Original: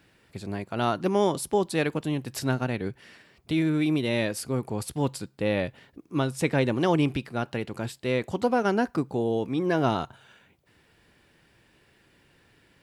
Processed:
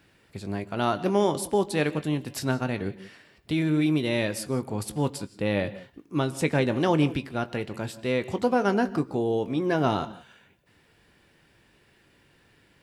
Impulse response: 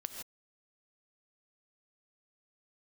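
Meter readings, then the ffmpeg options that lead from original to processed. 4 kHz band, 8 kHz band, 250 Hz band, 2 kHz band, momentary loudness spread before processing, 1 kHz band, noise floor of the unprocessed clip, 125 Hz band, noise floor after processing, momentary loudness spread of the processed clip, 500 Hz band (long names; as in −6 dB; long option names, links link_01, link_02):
+0.5 dB, 0.0 dB, +0.5 dB, +0.5 dB, 9 LU, +0.5 dB, −63 dBFS, +0.5 dB, −62 dBFS, 10 LU, +0.5 dB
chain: -filter_complex "[0:a]asplit=2[link_01][link_02];[1:a]atrim=start_sample=2205,lowpass=8800,adelay=20[link_03];[link_02][link_03]afir=irnorm=-1:irlink=0,volume=-9.5dB[link_04];[link_01][link_04]amix=inputs=2:normalize=0"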